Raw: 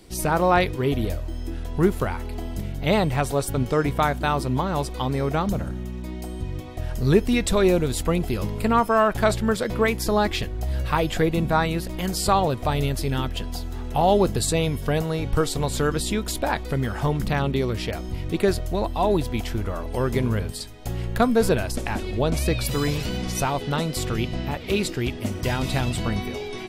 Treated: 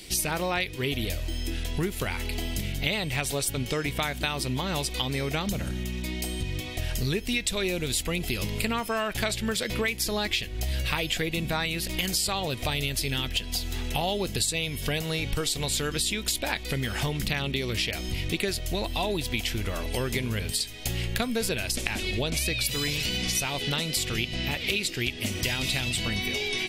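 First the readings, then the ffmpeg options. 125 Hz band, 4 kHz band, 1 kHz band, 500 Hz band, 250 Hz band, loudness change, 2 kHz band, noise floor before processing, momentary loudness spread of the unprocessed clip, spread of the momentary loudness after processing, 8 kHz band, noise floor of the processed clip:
-6.5 dB, +5.0 dB, -10.0 dB, -9.0 dB, -7.5 dB, -4.0 dB, +0.5 dB, -33 dBFS, 11 LU, 5 LU, +2.5 dB, -36 dBFS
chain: -af "highshelf=f=1.7k:t=q:w=1.5:g=11,acompressor=threshold=-25dB:ratio=6"

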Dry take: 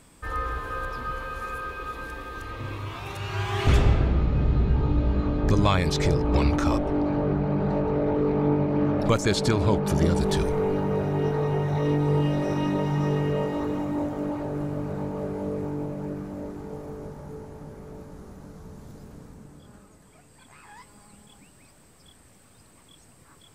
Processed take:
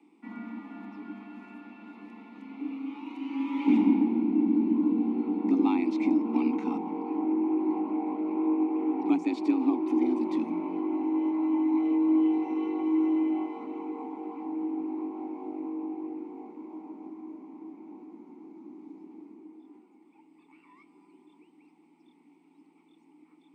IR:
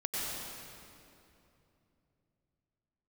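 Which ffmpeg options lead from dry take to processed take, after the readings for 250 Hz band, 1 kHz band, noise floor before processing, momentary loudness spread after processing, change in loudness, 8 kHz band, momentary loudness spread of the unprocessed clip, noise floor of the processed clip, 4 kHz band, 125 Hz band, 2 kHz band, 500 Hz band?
+2.0 dB, -7.0 dB, -55 dBFS, 21 LU, -2.5 dB, under -25 dB, 17 LU, -61 dBFS, under -15 dB, under -25 dB, -13.0 dB, -9.0 dB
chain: -filter_complex "[0:a]afreqshift=170,asplit=3[a][b][c];[a]bandpass=f=300:t=q:w=8,volume=0dB[d];[b]bandpass=f=870:t=q:w=8,volume=-6dB[e];[c]bandpass=f=2.24k:t=q:w=8,volume=-9dB[f];[d][e][f]amix=inputs=3:normalize=0,asplit=2[g][h];[1:a]atrim=start_sample=2205[i];[h][i]afir=irnorm=-1:irlink=0,volume=-27.5dB[j];[g][j]amix=inputs=2:normalize=0,volume=4dB"

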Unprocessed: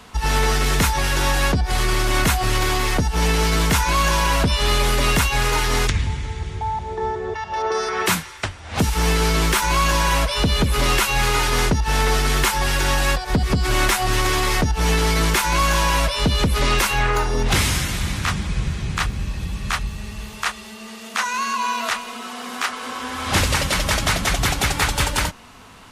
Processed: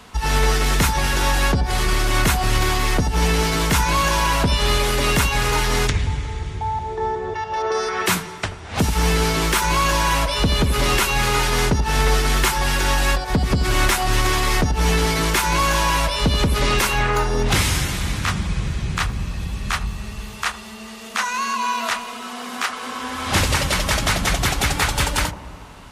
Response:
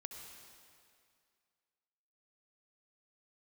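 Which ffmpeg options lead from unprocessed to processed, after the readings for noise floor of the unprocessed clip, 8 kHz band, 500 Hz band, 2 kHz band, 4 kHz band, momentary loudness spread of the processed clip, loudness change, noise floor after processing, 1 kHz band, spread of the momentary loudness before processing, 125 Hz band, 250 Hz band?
-37 dBFS, 0.0 dB, +0.5 dB, 0.0 dB, 0.0 dB, 9 LU, 0.0 dB, -36 dBFS, +0.5 dB, 9 LU, +0.5 dB, +0.5 dB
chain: -filter_complex "[0:a]asplit=2[a][b];[b]lowpass=1k[c];[1:a]atrim=start_sample=2205,asetrate=37926,aresample=44100,adelay=82[d];[c][d]afir=irnorm=-1:irlink=0,volume=-6.5dB[e];[a][e]amix=inputs=2:normalize=0"

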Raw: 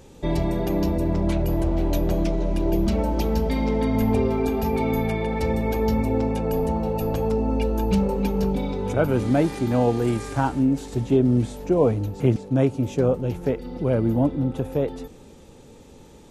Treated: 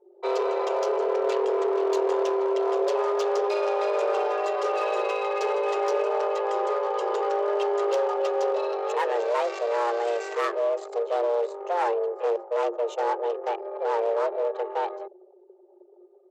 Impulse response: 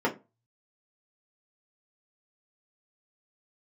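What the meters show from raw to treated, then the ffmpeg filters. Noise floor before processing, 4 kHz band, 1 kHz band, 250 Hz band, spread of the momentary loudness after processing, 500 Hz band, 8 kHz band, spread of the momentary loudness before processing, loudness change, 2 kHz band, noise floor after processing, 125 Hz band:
-47 dBFS, -0.5 dB, +4.0 dB, -16.5 dB, 4 LU, +1.5 dB, n/a, 5 LU, -3.0 dB, +1.0 dB, -54 dBFS, under -40 dB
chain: -af "anlmdn=2.51,equalizer=f=370:w=1.8:g=-7.5,aresample=16000,asoftclip=type=hard:threshold=-20.5dB,aresample=44100,aeval=exprs='0.112*(cos(1*acos(clip(val(0)/0.112,-1,1)))-cos(1*PI/2))+0.00316*(cos(2*acos(clip(val(0)/0.112,-1,1)))-cos(2*PI/2))+0.002*(cos(3*acos(clip(val(0)/0.112,-1,1)))-cos(3*PI/2))+0.00501*(cos(5*acos(clip(val(0)/0.112,-1,1)))-cos(5*PI/2))+0.00398*(cos(8*acos(clip(val(0)/0.112,-1,1)))-cos(8*PI/2))':c=same,afreqshift=350"

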